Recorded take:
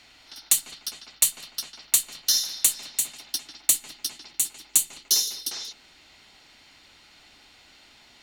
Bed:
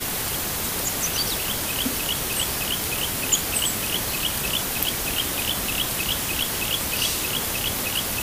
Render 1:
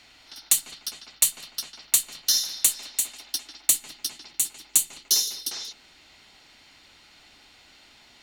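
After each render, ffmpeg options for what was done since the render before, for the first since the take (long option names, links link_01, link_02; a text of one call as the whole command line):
ffmpeg -i in.wav -filter_complex "[0:a]asettb=1/sr,asplit=3[link_01][link_02][link_03];[link_01]atrim=end=2.704[link_04];[link_02]atrim=start=2.7:end=3.68,asetpts=PTS-STARTPTS,afade=type=in:duration=0.004:curve=qsin,afade=type=out:start_time=0.976:duration=0.004:curve=qsin,equalizer=frequency=160:width=2.5:gain=-10.5[link_05];[link_03]atrim=start=3.676[link_06];[link_04][link_05]acrossfade=duration=0.004:curve1=hsin:curve2=qsin[link_07];[link_07][link_06]acrossfade=duration=0.004:curve1=qsin:curve2=hsin" out.wav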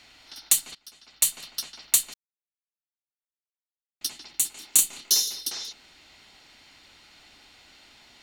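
ffmpeg -i in.wav -filter_complex "[0:a]asettb=1/sr,asplit=3[link_01][link_02][link_03];[link_01]atrim=end=4.534[link_04];[link_02]atrim=start=4.53:end=5.13,asetpts=PTS-STARTPTS,afade=type=in:duration=0.004:curve=qsin,afade=type=out:start_time=0.596:duration=0.004:curve=qsin,asplit=2[link_05][link_06];[link_06]adelay=29,volume=-2.5dB[link_07];[link_05][link_07]amix=inputs=2:normalize=0,atrim=end_sample=26460[link_08];[link_03]atrim=start=5.126[link_09];[link_04][link_08]acrossfade=duration=0.004:curve1=hsin:curve2=qsin[link_10];[link_10][link_09]acrossfade=duration=0.004:curve1=qsin:curve2=hsin,asplit=4[link_11][link_12][link_13][link_14];[link_11]atrim=end=0.75,asetpts=PTS-STARTPTS,afade=type=out:start_time=0.746:duration=0.004:curve=hsin:silence=0.158489[link_15];[link_12]atrim=start=0.75:end=2.14,asetpts=PTS-STARTPTS,afade=type=in:duration=0.54:curve=qua:silence=0.158489,afade=type=out:start_time=1.386:duration=0.004:curve=hsin[link_16];[link_13]atrim=start=2.14:end=4.01,asetpts=PTS-STARTPTS,volume=0[link_17];[link_14]atrim=start=4.01,asetpts=PTS-STARTPTS,afade=type=in:duration=0.004:curve=hsin[link_18];[link_15][link_16][link_17][link_18]concat=n=4:v=0:a=1" out.wav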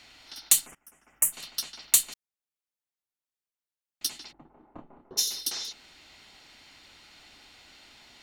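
ffmpeg -i in.wav -filter_complex "[0:a]asplit=3[link_01][link_02][link_03];[link_01]afade=type=out:start_time=0.65:duration=0.02[link_04];[link_02]asuperstop=centerf=4100:order=4:qfactor=0.66,afade=type=in:start_time=0.65:duration=0.02,afade=type=out:start_time=1.32:duration=0.02[link_05];[link_03]afade=type=in:start_time=1.32:duration=0.02[link_06];[link_04][link_05][link_06]amix=inputs=3:normalize=0,asplit=3[link_07][link_08][link_09];[link_07]afade=type=out:start_time=4.31:duration=0.02[link_10];[link_08]lowpass=frequency=1000:width=0.5412,lowpass=frequency=1000:width=1.3066,afade=type=in:start_time=4.31:duration=0.02,afade=type=out:start_time=5.17:duration=0.02[link_11];[link_09]afade=type=in:start_time=5.17:duration=0.02[link_12];[link_10][link_11][link_12]amix=inputs=3:normalize=0" out.wav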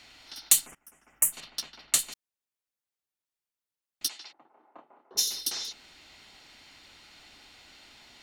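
ffmpeg -i in.wav -filter_complex "[0:a]asettb=1/sr,asplit=3[link_01][link_02][link_03];[link_01]atrim=end=1.404[link_04];[link_02]atrim=start=1.4:end=1.99,asetpts=PTS-STARTPTS,afade=type=in:duration=0.004:curve=qsin,afade=type=out:start_time=0.586:duration=0.004:curve=qsin,adynamicsmooth=sensitivity=5:basefreq=3000[link_05];[link_03]atrim=start=1.986[link_06];[link_04][link_05]acrossfade=duration=0.004:curve1=hsin:curve2=qsin[link_07];[link_07][link_06]acrossfade=duration=0.004:curve1=qsin:curve2=hsin,asettb=1/sr,asplit=3[link_08][link_09][link_10];[link_08]atrim=end=4.084[link_11];[link_09]atrim=start=4.08:end=5.15,asetpts=PTS-STARTPTS,afade=type=in:duration=0.004:curve=qsin,afade=type=out:start_time=1.066:duration=0.004:curve=qsin,highpass=560,lowpass=6200[link_12];[link_10]atrim=start=5.146[link_13];[link_11][link_12]acrossfade=duration=0.004:curve1=hsin:curve2=qsin[link_14];[link_14][link_13]acrossfade=duration=0.004:curve1=qsin:curve2=hsin" out.wav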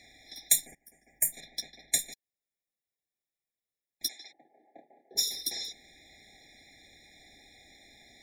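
ffmpeg -i in.wav -af "afftfilt=real='re*eq(mod(floor(b*sr/1024/830),2),0)':imag='im*eq(mod(floor(b*sr/1024/830),2),0)':win_size=1024:overlap=0.75" out.wav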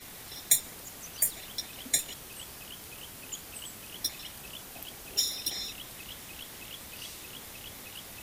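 ffmpeg -i in.wav -i bed.wav -filter_complex "[1:a]volume=-19.5dB[link_01];[0:a][link_01]amix=inputs=2:normalize=0" out.wav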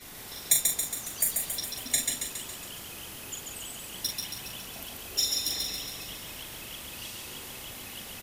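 ffmpeg -i in.wav -filter_complex "[0:a]asplit=2[link_01][link_02];[link_02]adelay=41,volume=-6dB[link_03];[link_01][link_03]amix=inputs=2:normalize=0,asplit=2[link_04][link_05];[link_05]aecho=0:1:138|276|414|552|690|828|966|1104:0.631|0.372|0.22|0.13|0.0765|0.0451|0.0266|0.0157[link_06];[link_04][link_06]amix=inputs=2:normalize=0" out.wav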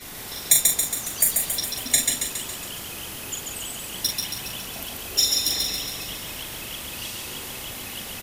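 ffmpeg -i in.wav -af "volume=7dB,alimiter=limit=-2dB:level=0:latency=1" out.wav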